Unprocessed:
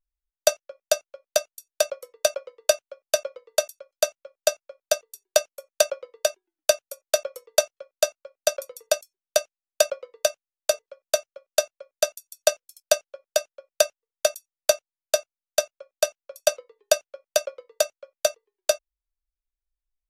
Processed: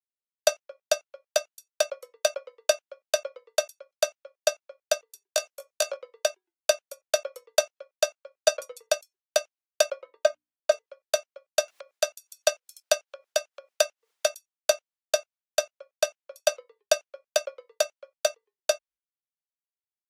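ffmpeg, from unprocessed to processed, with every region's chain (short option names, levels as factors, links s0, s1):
-filter_complex "[0:a]asettb=1/sr,asplit=3[s0][s1][s2];[s0]atrim=end=5.264[s3];[s1]atrim=start=5.26:end=5.97,asetpts=PTS-STARTPTS,afade=t=in:d=0.004:c=qsin,afade=t=out:st=0.706:d=0.004:c=qsin,bass=f=250:g=-4,treble=f=4000:g=4,acompressor=threshold=0.0447:ratio=1.5:attack=3.2:release=140:knee=1:detection=peak,asplit=2[s4][s5];[s5]adelay=18,volume=0.631[s6];[s4][s6]amix=inputs=2:normalize=0,atrim=end_sample=31311[s7];[s2]atrim=start=5.966[s8];[s3][s7]acrossfade=d=0.004:c1=hsin:c2=qsin[s9];[s9][s8]acrossfade=d=0.004:c1=qsin:c2=hsin,asettb=1/sr,asplit=3[s10][s11][s12];[s10]atrim=end=8.364[s13];[s11]atrim=start=8.36:end=8.8,asetpts=PTS-STARTPTS,afade=t=in:d=0.004:c=qsin,afade=t=out:st=0.436:d=0.004:c=qsin,lowpass=f=12000:w=0.5412,lowpass=f=12000:w=1.3066,lowshelf=f=130:g=7.5,aecho=1:1:6.3:0.84,atrim=end_sample=19404[s14];[s12]atrim=start=8.796[s15];[s13][s14]acrossfade=d=0.004:c1=hsin:c2=qsin[s16];[s16][s15]acrossfade=d=0.004:c1=qsin:c2=hsin,asettb=1/sr,asplit=3[s17][s18][s19];[s17]atrim=end=10.014[s20];[s18]atrim=start=10.01:end=10.72,asetpts=PTS-STARTPTS,afade=t=in:d=0.004:c=qsin,afade=t=out:st=0.706:d=0.004:c=qsin,lowpass=f=2000:p=1,bandreject=f=60:t=h:w=6,bandreject=f=120:t=h:w=6,bandreject=f=180:t=h:w=6,bandreject=f=240:t=h:w=6,bandreject=f=300:t=h:w=6,aecho=1:1:3.2:0.74,atrim=end_sample=31311[s21];[s19]atrim=start=10.716[s22];[s20][s21]acrossfade=d=0.004:c1=hsin:c2=qsin[s23];[s23][s22]acrossfade=d=0.004:c1=qsin:c2=hsin,asettb=1/sr,asplit=3[s24][s25][s26];[s24]atrim=end=11.684[s27];[s25]atrim=start=11.68:end=14.32,asetpts=PTS-STARTPTS,afade=t=in:d=0.004:c=qsin,afade=t=out:st=2.636:d=0.004:c=qsin,highpass=f=290:p=1,acompressor=mode=upward:threshold=0.0224:ratio=2.5:attack=3.2:release=140:knee=2.83:detection=peak[s28];[s26]atrim=start=14.316[s29];[s27][s28]acrossfade=d=0.004:c1=hsin:c2=qsin[s30];[s30][s29]acrossfade=d=0.004:c1=qsin:c2=hsin,agate=range=0.0224:threshold=0.00316:ratio=3:detection=peak,highpass=f=540:p=1,highshelf=f=7700:g=-9.5"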